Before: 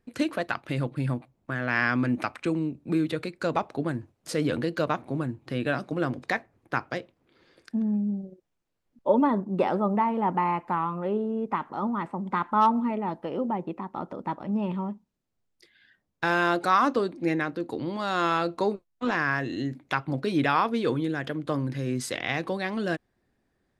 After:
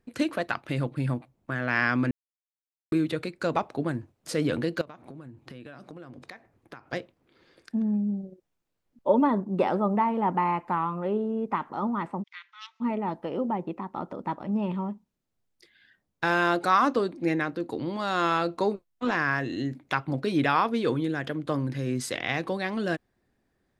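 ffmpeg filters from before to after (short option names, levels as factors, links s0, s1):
-filter_complex "[0:a]asettb=1/sr,asplit=3[s0][s1][s2];[s0]atrim=end=4.814[s3];[s1]atrim=start=4.81:end=6.93,asetpts=PTS-STARTPTS,afade=t=in:d=0.004:c=qsin,afade=t=out:st=2.116:d=0.004:c=qsin,acompressor=threshold=0.0112:ratio=16:attack=3.2:release=140:knee=1:detection=peak[s4];[s2]atrim=start=6.926[s5];[s3][s4]acrossfade=d=0.004:c1=hsin:c2=qsin[s6];[s6][s5]acrossfade=d=0.004:c1=qsin:c2=hsin,asplit=3[s7][s8][s9];[s7]afade=t=out:st=12.22:d=0.02[s10];[s8]asuperpass=centerf=3600:order=8:qfactor=0.84,afade=t=in:st=12.22:d=0.02,afade=t=out:st=12.8:d=0.02[s11];[s9]afade=t=in:st=12.8:d=0.02[s12];[s10][s11][s12]amix=inputs=3:normalize=0,asplit=3[s13][s14][s15];[s13]atrim=end=2.11,asetpts=PTS-STARTPTS,afade=t=out:st=2.106:d=0.004:c=hsin[s16];[s14]atrim=start=2.11:end=2.92,asetpts=PTS-STARTPTS,volume=0[s17];[s15]atrim=start=2.92,asetpts=PTS-STARTPTS,afade=t=in:d=0.004:c=hsin[s18];[s16][s17][s18]concat=n=3:v=0:a=1"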